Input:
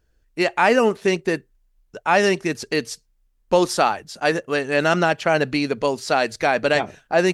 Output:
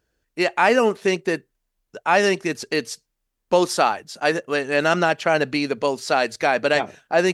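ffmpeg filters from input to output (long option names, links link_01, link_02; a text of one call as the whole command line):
ffmpeg -i in.wav -af "highpass=frequency=170:poles=1" out.wav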